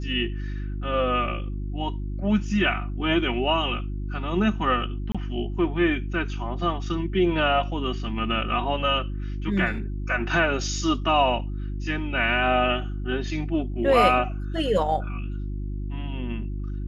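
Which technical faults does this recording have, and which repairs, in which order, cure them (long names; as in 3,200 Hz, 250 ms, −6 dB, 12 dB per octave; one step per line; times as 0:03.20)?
mains hum 50 Hz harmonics 7 −30 dBFS
0:05.12–0:05.15: drop-out 26 ms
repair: hum removal 50 Hz, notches 7
repair the gap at 0:05.12, 26 ms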